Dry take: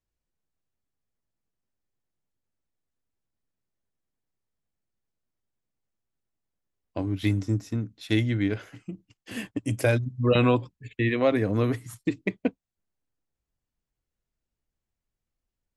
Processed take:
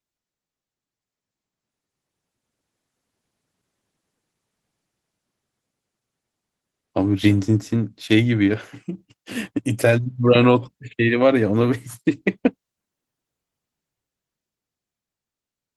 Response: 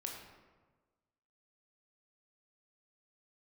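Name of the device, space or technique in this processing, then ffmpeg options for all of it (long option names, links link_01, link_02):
video call: -af "highpass=120,dynaudnorm=framelen=260:gausssize=17:maxgain=16.5dB" -ar 48000 -c:a libopus -b:a 16k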